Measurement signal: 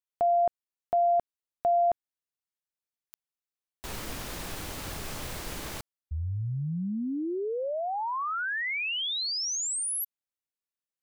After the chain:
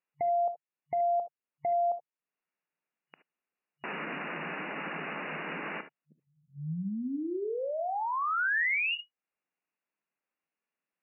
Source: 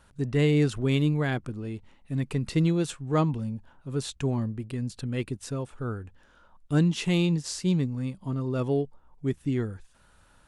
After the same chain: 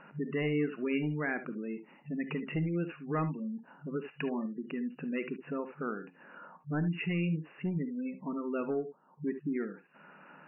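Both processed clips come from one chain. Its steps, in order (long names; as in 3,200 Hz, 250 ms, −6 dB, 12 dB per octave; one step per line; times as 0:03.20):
brick-wall band-pass 150–2,900 Hz
downward compressor 2 to 1, threshold −52 dBFS
hard clipping −35.5 dBFS
dynamic equaliser 1,800 Hz, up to +6 dB, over −60 dBFS, Q 0.92
gate on every frequency bin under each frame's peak −25 dB strong
reverb whose tail is shaped and stops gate 90 ms rising, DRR 10.5 dB
level +8.5 dB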